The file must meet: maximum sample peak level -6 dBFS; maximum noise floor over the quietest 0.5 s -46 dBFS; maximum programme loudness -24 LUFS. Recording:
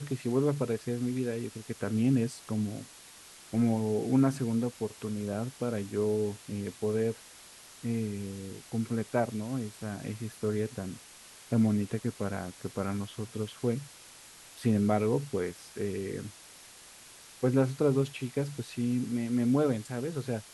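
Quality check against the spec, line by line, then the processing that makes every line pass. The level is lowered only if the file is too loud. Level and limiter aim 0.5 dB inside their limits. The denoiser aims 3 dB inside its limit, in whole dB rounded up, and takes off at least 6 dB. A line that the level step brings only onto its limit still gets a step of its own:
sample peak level -14.5 dBFS: OK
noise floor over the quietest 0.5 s -52 dBFS: OK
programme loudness -31.5 LUFS: OK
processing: none

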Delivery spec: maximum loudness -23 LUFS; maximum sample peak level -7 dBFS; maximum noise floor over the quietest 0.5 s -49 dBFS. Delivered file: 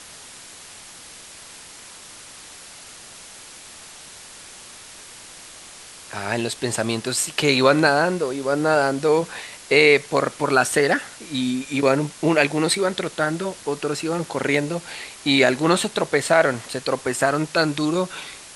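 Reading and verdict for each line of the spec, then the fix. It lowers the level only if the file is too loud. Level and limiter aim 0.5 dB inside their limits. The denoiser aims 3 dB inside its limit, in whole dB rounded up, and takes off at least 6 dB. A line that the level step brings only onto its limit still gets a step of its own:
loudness -20.5 LUFS: fail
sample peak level -2.5 dBFS: fail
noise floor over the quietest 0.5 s -42 dBFS: fail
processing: denoiser 7 dB, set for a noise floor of -42 dBFS; gain -3 dB; limiter -7.5 dBFS

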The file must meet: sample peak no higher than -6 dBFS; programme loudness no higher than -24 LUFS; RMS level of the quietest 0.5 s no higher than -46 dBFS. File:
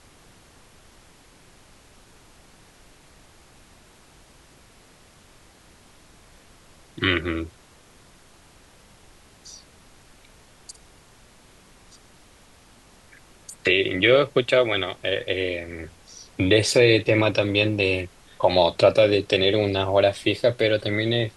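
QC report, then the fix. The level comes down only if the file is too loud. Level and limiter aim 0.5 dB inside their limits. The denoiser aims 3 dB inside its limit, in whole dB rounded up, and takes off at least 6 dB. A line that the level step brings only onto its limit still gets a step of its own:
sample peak -4.0 dBFS: fail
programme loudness -21.0 LUFS: fail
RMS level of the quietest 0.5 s -53 dBFS: OK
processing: gain -3.5 dB

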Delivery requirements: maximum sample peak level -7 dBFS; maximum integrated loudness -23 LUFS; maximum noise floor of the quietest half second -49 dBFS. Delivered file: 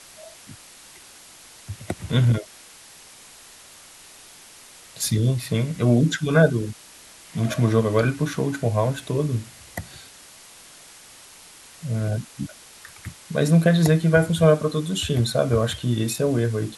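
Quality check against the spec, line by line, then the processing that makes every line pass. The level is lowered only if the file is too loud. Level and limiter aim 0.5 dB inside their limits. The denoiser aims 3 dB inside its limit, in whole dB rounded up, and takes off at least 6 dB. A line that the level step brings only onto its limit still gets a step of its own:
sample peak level -5.5 dBFS: fail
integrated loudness -22.0 LUFS: fail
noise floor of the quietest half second -47 dBFS: fail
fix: denoiser 6 dB, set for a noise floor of -47 dBFS; gain -1.5 dB; limiter -7.5 dBFS

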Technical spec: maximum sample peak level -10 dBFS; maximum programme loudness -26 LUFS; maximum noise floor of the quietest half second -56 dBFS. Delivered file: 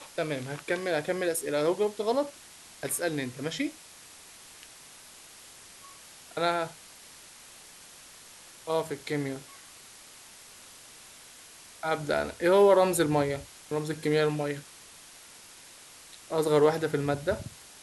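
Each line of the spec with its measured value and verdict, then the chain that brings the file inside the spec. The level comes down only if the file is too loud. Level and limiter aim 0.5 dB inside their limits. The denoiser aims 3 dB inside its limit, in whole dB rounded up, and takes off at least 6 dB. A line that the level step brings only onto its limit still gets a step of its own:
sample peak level -11.0 dBFS: OK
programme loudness -28.5 LUFS: OK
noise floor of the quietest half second -51 dBFS: fail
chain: denoiser 8 dB, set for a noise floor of -51 dBFS

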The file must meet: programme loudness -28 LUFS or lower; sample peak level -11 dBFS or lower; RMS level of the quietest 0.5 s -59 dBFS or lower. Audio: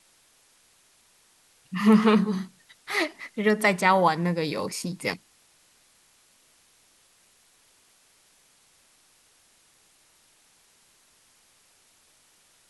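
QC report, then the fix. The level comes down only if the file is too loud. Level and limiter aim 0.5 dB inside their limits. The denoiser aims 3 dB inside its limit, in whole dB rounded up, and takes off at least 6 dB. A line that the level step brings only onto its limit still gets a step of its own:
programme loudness -24.0 LUFS: fail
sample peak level -6.0 dBFS: fail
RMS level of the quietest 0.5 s -62 dBFS: OK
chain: gain -4.5 dB; limiter -11.5 dBFS

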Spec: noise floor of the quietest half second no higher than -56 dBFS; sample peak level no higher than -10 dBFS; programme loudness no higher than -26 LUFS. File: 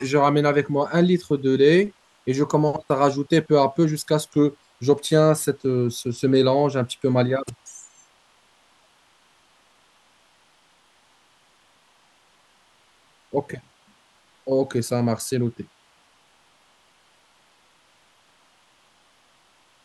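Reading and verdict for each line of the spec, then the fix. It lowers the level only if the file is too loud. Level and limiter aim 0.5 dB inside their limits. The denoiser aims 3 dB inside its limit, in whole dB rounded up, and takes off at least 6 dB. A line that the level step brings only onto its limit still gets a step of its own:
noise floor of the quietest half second -60 dBFS: OK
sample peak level -4.5 dBFS: fail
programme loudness -21.5 LUFS: fail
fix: gain -5 dB; limiter -10.5 dBFS

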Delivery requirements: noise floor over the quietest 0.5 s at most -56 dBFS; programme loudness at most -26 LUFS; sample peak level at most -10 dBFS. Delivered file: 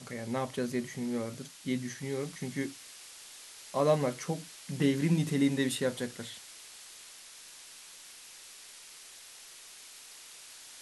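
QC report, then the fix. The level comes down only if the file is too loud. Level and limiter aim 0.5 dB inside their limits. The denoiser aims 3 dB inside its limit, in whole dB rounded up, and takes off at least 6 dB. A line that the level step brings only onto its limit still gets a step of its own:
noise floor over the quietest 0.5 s -51 dBFS: fail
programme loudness -32.5 LUFS: OK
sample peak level -14.0 dBFS: OK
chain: denoiser 8 dB, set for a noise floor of -51 dBFS

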